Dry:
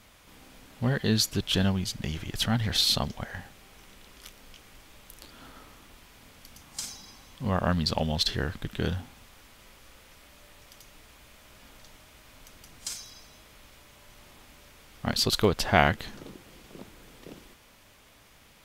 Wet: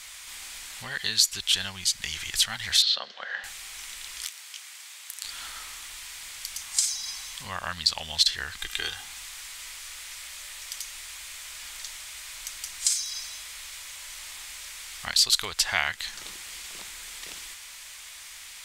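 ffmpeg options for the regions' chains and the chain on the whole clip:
ffmpeg -i in.wav -filter_complex "[0:a]asettb=1/sr,asplit=3[link_01][link_02][link_03];[link_01]atrim=end=2.824[link_04];[link_02]atrim=start=2.82:end=3.44,asetpts=PTS-STARTPTS,afade=type=in:duration=0.004:curve=qsin,afade=type=out:start_time=0.616:duration=0.004:curve=qsin,highpass=frequency=240:width=0.5412,highpass=frequency=240:width=1.3066,equalizer=frequency=310:width_type=q:width=4:gain=-4,equalizer=frequency=520:width_type=q:width=4:gain=10,equalizer=frequency=910:width_type=q:width=4:gain=-6,equalizer=frequency=1500:width_type=q:width=4:gain=3,equalizer=frequency=2300:width_type=q:width=4:gain=-10,lowpass=frequency=3800:width=0.5412,lowpass=frequency=3800:width=1.3066,bandreject=frequency=356.7:width_type=h:width=4,bandreject=frequency=713.4:width_type=h:width=4,bandreject=frequency=1070.1:width_type=h:width=4,bandreject=frequency=1426.8:width_type=h:width=4,bandreject=frequency=1783.5:width_type=h:width=4,bandreject=frequency=2140.2:width_type=h:width=4,bandreject=frequency=2496.9:width_type=h:width=4,bandreject=frequency=2853.6:width_type=h:width=4,bandreject=frequency=3210.3:width_type=h:width=4,bandreject=frequency=3567:width_type=h:width=4,bandreject=frequency=3923.7:width_type=h:width=4,bandreject=frequency=4280.4:width_type=h:width=4,bandreject=frequency=4637.1:width_type=h:width=4,bandreject=frequency=4993.8:width_type=h:width=4,bandreject=frequency=5350.5:width_type=h:width=4,bandreject=frequency=5707.2:width_type=h:width=4,bandreject=frequency=6063.9:width_type=h:width=4,bandreject=frequency=6420.6:width_type=h:width=4,bandreject=frequency=6777.3:width_type=h:width=4,bandreject=frequency=7134:width_type=h:width=4,bandreject=frequency=7490.7:width_type=h:width=4,bandreject=frequency=7847.4:width_type=h:width=4,bandreject=frequency=8204.1:width_type=h:width=4,bandreject=frequency=8560.8:width_type=h:width=4,bandreject=frequency=8917.5:width_type=h:width=4,bandreject=frequency=9274.2:width_type=h:width=4,bandreject=frequency=9630.9:width_type=h:width=4,bandreject=frequency=9987.6:width_type=h:width=4,bandreject=frequency=10344.3:width_type=h:width=4,bandreject=frequency=10701:width_type=h:width=4,bandreject=frequency=11057.7:width_type=h:width=4,bandreject=frequency=11414.4:width_type=h:width=4,bandreject=frequency=11771.1:width_type=h:width=4,bandreject=frequency=12127.8:width_type=h:width=4,bandreject=frequency=12484.5:width_type=h:width=4,bandreject=frequency=12841.2:width_type=h:width=4,bandreject=frequency=13197.9:width_type=h:width=4,bandreject=frequency=13554.6:width_type=h:width=4[link_05];[link_03]atrim=start=3.436[link_06];[link_04][link_05]acrossfade=duration=0.004:curve1=hsin:curve2=qsin[link_07];[link_07][link_06]acrossfade=duration=0.004:curve1=qsin:curve2=hsin,asettb=1/sr,asplit=3[link_08][link_09][link_10];[link_08]atrim=end=4.254[link_11];[link_09]atrim=start=4.25:end=5.25,asetpts=PTS-STARTPTS,afade=type=in:duration=0.004:curve=qsin,afade=type=out:start_time=0.996:duration=0.004:curve=qsin,highpass=630,aeval=exprs='(tanh(31.6*val(0)+0.7)-tanh(0.7))/31.6':channel_layout=same[link_12];[link_10]atrim=start=5.246[link_13];[link_11][link_12]acrossfade=duration=0.004:curve1=hsin:curve2=qsin[link_14];[link_14][link_13]acrossfade=duration=0.004:curve1=qsin:curve2=hsin,asettb=1/sr,asplit=3[link_15][link_16][link_17];[link_15]atrim=end=8.584[link_18];[link_16]atrim=start=8.58:end=9.05,asetpts=PTS-STARTPTS,afade=type=in:duration=0.004:curve=qsin,afade=type=out:start_time=0.466:duration=0.004:curve=qsin,equalizer=frequency=91:width_type=o:width=0.97:gain=-11.5,aecho=1:1:2.5:0.58,atrim=end_sample=20727[link_19];[link_17]atrim=start=9.046[link_20];[link_18][link_19]acrossfade=duration=0.004:curve1=hsin:curve2=qsin[link_21];[link_21][link_20]acrossfade=duration=0.004:curve1=qsin:curve2=hsin,highshelf=frequency=3400:gain=10.5,acompressor=threshold=-37dB:ratio=2,equalizer=frequency=125:width_type=o:width=1:gain=-10,equalizer=frequency=250:width_type=o:width=1:gain=-11,equalizer=frequency=500:width_type=o:width=1:gain=-6,equalizer=frequency=1000:width_type=o:width=1:gain=4,equalizer=frequency=2000:width_type=o:width=1:gain=9,equalizer=frequency=4000:width_type=o:width=1:gain=6,equalizer=frequency=8000:width_type=o:width=1:gain=11" out.wav

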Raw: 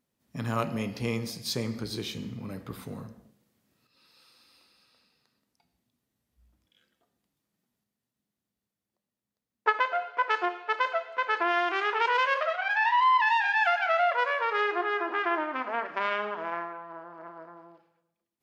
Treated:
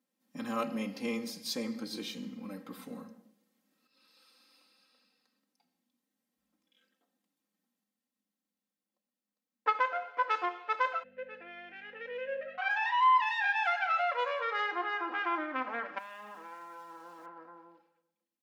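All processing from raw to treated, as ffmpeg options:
ffmpeg -i in.wav -filter_complex "[0:a]asettb=1/sr,asplit=3[link_01][link_02][link_03];[link_01]atrim=end=11.034[link_04];[link_02]atrim=start=11.03:end=12.58,asetpts=PTS-STARTPTS,afade=type=in:duration=0.004:curve=qsin,afade=type=out:start_time=1.546:duration=0.004:curve=qsin,asplit=3[link_05][link_06][link_07];[link_05]bandpass=frequency=530:width_type=q:width=8,volume=0dB[link_08];[link_06]bandpass=frequency=1840:width_type=q:width=8,volume=-6dB[link_09];[link_07]bandpass=frequency=2480:width_type=q:width=8,volume=-9dB[link_10];[link_08][link_09][link_10]amix=inputs=3:normalize=0,aeval=exprs='val(0)+0.00316*(sin(2*PI*50*n/s)+sin(2*PI*2*50*n/s)/2+sin(2*PI*3*50*n/s)/3+sin(2*PI*4*50*n/s)/4+sin(2*PI*5*50*n/s)/5)':channel_layout=same[link_11];[link_03]atrim=start=12.576[link_12];[link_04][link_11]acrossfade=duration=0.004:curve1=hsin:curve2=qsin[link_13];[link_13][link_12]acrossfade=duration=0.004:curve1=qsin:curve2=hsin,asettb=1/sr,asplit=3[link_14][link_15][link_16];[link_14]atrim=end=15.984[link_17];[link_15]atrim=start=15.98:end=17.26,asetpts=PTS-STARTPTS,afade=type=in:duration=0.004:curve=qsin,afade=type=out:start_time=1.276:duration=0.004:curve=qsin,acompressor=threshold=-38dB:ratio=5:attack=3.2:release=140:knee=1:detection=peak,aeval=exprs='val(0)*gte(abs(val(0)),0.002)':channel_layout=same[link_18];[link_16]atrim=start=17.256[link_19];[link_17][link_18]acrossfade=duration=0.004:curve1=hsin:curve2=qsin[link_20];[link_20][link_19]acrossfade=duration=0.004:curve1=qsin:curve2=hsin,highpass=frequency=160:width=0.5412,highpass=frequency=160:width=1.3066,aecho=1:1:3.8:0.89,volume=-6.5dB" out.wav

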